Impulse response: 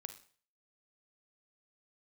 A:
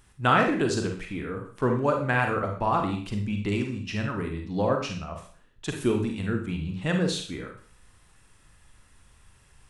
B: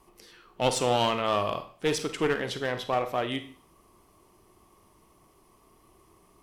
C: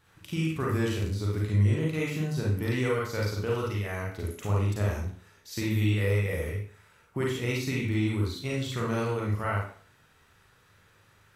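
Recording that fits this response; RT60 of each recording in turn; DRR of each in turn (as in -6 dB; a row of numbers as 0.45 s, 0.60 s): B; 0.45 s, 0.45 s, 0.45 s; 3.0 dB, 9.0 dB, -4.0 dB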